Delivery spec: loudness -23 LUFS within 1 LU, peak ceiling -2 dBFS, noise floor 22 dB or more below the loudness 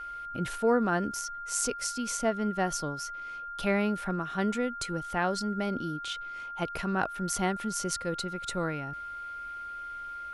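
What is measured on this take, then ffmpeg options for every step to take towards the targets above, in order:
steady tone 1.4 kHz; tone level -37 dBFS; loudness -31.5 LUFS; peak level -12.5 dBFS; loudness target -23.0 LUFS
-> -af "bandreject=f=1400:w=30"
-af "volume=2.66"

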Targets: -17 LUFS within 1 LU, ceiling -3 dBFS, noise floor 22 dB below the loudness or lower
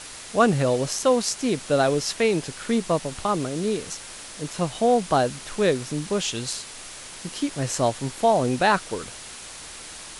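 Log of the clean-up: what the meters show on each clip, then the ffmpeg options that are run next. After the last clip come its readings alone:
noise floor -40 dBFS; noise floor target -46 dBFS; loudness -24.0 LUFS; peak level -6.0 dBFS; loudness target -17.0 LUFS
-> -af "afftdn=nr=6:nf=-40"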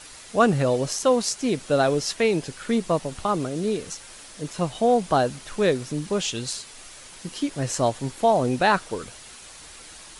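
noise floor -44 dBFS; noise floor target -46 dBFS
-> -af "afftdn=nr=6:nf=-44"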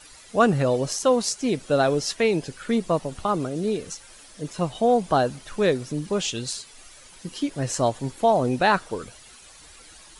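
noise floor -48 dBFS; loudness -24.0 LUFS; peak level -6.0 dBFS; loudness target -17.0 LUFS
-> -af "volume=2.24,alimiter=limit=0.708:level=0:latency=1"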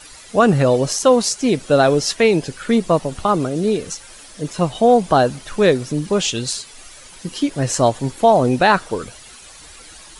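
loudness -17.5 LUFS; peak level -3.0 dBFS; noise floor -41 dBFS

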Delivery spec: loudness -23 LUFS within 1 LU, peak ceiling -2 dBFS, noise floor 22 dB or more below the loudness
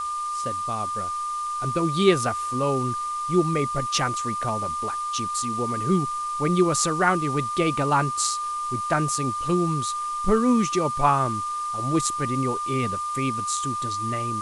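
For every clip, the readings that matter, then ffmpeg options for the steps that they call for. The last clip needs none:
steady tone 1.2 kHz; tone level -26 dBFS; noise floor -29 dBFS; noise floor target -47 dBFS; loudness -24.5 LUFS; peak level -5.5 dBFS; loudness target -23.0 LUFS
-> -af "bandreject=f=1200:w=30"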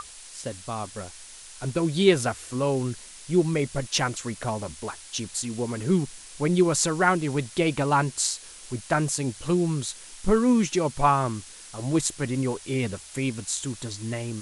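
steady tone not found; noise floor -45 dBFS; noise floor target -48 dBFS
-> -af "afftdn=nr=6:nf=-45"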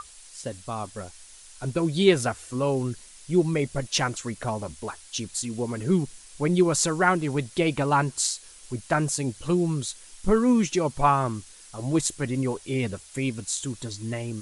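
noise floor -49 dBFS; loudness -26.0 LUFS; peak level -6.5 dBFS; loudness target -23.0 LUFS
-> -af "volume=1.41"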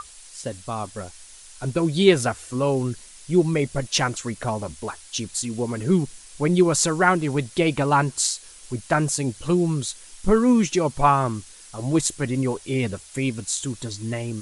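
loudness -23.0 LUFS; peak level -3.5 dBFS; noise floor -46 dBFS

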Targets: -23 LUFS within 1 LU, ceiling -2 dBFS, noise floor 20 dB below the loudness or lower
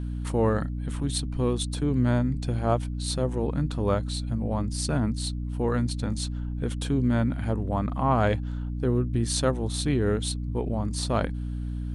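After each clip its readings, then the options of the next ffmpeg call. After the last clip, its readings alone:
hum 60 Hz; highest harmonic 300 Hz; hum level -28 dBFS; loudness -27.5 LUFS; peak level -11.5 dBFS; loudness target -23.0 LUFS
-> -af "bandreject=f=60:t=h:w=4,bandreject=f=120:t=h:w=4,bandreject=f=180:t=h:w=4,bandreject=f=240:t=h:w=4,bandreject=f=300:t=h:w=4"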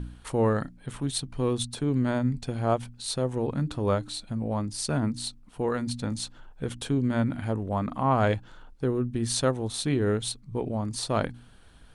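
hum not found; loudness -29.0 LUFS; peak level -12.5 dBFS; loudness target -23.0 LUFS
-> -af "volume=2"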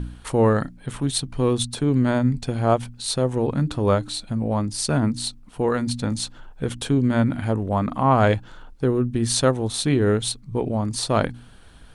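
loudness -22.5 LUFS; peak level -6.5 dBFS; noise floor -46 dBFS

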